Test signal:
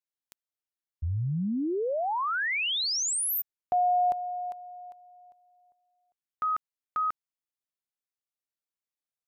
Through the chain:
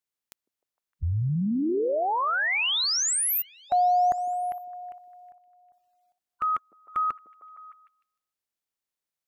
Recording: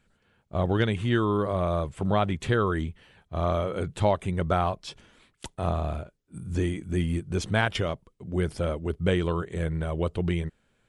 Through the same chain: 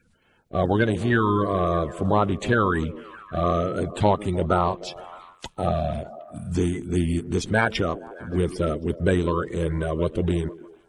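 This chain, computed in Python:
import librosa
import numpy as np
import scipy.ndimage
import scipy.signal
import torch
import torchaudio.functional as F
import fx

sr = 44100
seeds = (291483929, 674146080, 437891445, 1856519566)

y = fx.spec_quant(x, sr, step_db=30)
y = fx.echo_stepped(y, sr, ms=153, hz=310.0, octaves=0.7, feedback_pct=70, wet_db=-11.5)
y = F.gain(torch.from_numpy(y), 4.0).numpy()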